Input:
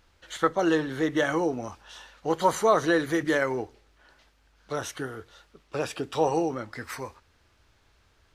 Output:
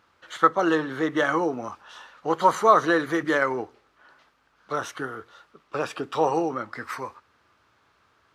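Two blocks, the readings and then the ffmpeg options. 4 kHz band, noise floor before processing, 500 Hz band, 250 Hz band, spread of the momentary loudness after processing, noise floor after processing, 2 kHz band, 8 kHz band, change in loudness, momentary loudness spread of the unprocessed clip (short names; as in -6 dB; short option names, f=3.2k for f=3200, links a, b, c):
0.0 dB, -64 dBFS, +1.0 dB, +0.5 dB, 16 LU, -65 dBFS, +3.5 dB, -3.0 dB, +2.5 dB, 17 LU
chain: -filter_complex "[0:a]highpass=140,equalizer=f=1.2k:t=o:w=0.68:g=8.5,asplit=2[a][b];[b]adynamicsmooth=sensitivity=4.5:basefreq=5.4k,volume=-2dB[c];[a][c]amix=inputs=2:normalize=0,volume=-4.5dB"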